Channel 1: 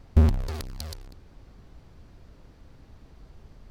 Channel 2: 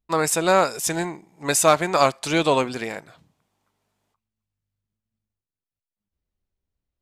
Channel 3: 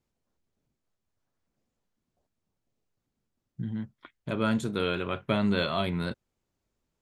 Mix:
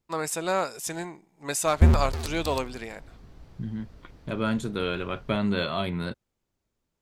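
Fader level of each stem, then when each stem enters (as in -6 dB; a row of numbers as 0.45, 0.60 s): +1.0, -8.5, 0.0 dB; 1.65, 0.00, 0.00 s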